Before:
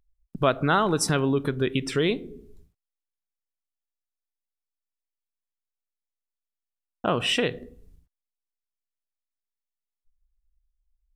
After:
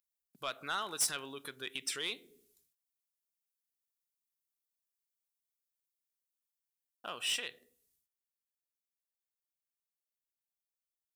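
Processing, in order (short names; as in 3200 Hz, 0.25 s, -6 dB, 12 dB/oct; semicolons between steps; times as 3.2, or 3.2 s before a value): differentiator; vocal rider 2 s; soft clip -26 dBFS, distortion -8 dB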